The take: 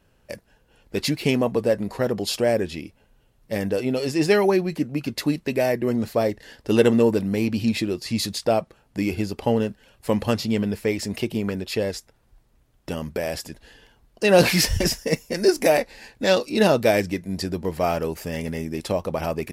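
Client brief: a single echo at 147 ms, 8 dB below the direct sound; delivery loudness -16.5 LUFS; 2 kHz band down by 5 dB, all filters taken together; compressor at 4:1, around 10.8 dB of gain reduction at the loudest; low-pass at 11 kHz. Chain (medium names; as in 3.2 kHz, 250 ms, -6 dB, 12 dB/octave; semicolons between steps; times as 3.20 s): low-pass 11 kHz; peaking EQ 2 kHz -6.5 dB; compression 4:1, threshold -25 dBFS; delay 147 ms -8 dB; trim +12.5 dB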